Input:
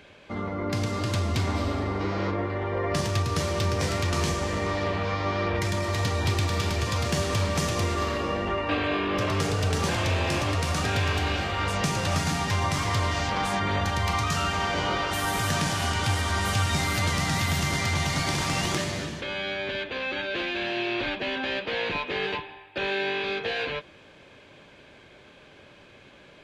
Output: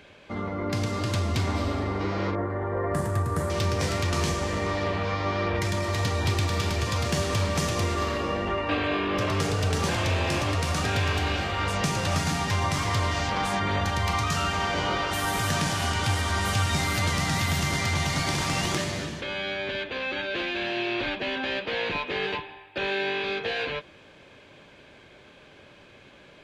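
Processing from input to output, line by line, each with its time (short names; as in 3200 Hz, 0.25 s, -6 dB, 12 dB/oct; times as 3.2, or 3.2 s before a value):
2.35–3.5 band shelf 3800 Hz -16 dB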